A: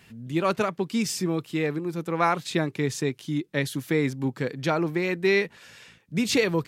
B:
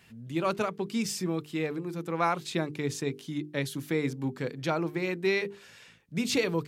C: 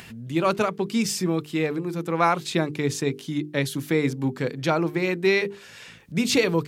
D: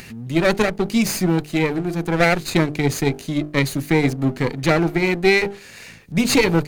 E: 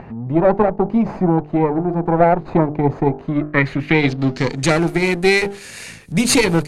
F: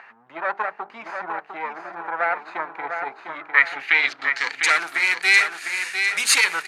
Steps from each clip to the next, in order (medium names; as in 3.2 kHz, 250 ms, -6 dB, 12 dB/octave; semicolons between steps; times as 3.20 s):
dynamic bell 1.8 kHz, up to -4 dB, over -44 dBFS, Q 4.8; hum notches 50/100/150/200/250/300/350/400/450 Hz; trim -4 dB
upward compressor, threshold -43 dBFS; trim +6.5 dB
comb filter that takes the minimum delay 0.45 ms; trim +5.5 dB
in parallel at -0.5 dB: compression, threshold -24 dBFS, peak gain reduction 12.5 dB; on the sum: low-pass sweep 880 Hz -> 10 kHz, 3.12–4.79 s; trim -1 dB
resonant high-pass 1.5 kHz, resonance Q 1.9; on a send: feedback delay 702 ms, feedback 36%, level -6.5 dB; on the sum: trim -1 dB